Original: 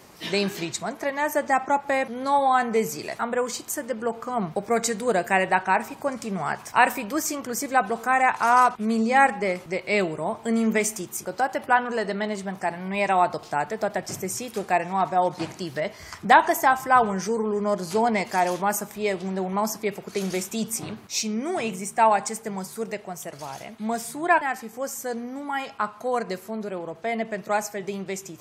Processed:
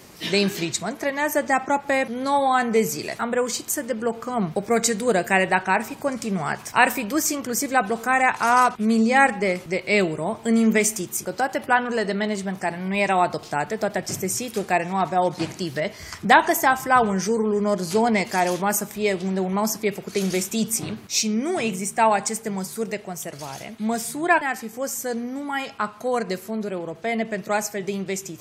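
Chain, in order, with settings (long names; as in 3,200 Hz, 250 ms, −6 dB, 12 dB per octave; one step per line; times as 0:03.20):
parametric band 910 Hz −5.5 dB 1.6 octaves
level +5 dB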